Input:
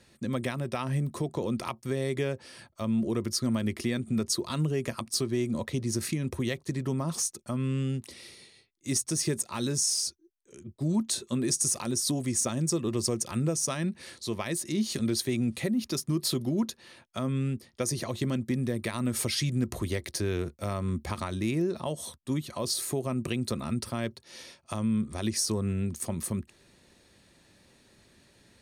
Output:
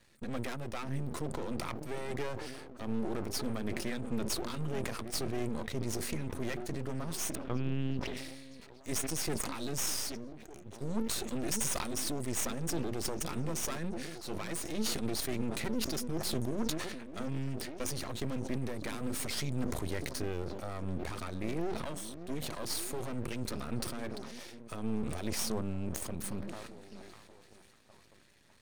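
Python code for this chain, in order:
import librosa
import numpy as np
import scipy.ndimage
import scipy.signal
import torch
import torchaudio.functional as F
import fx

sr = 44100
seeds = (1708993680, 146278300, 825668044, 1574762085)

y = fx.peak_eq(x, sr, hz=1900.0, db=3.0, octaves=1.0)
y = fx.lpc_vocoder(y, sr, seeds[0], excitation='pitch_kept', order=8, at=(7.35, 8.17))
y = fx.echo_stepped(y, sr, ms=602, hz=250.0, octaves=0.7, feedback_pct=70, wet_db=-10.5)
y = np.maximum(y, 0.0)
y = fx.sustainer(y, sr, db_per_s=35.0)
y = y * 10.0 ** (-3.0 / 20.0)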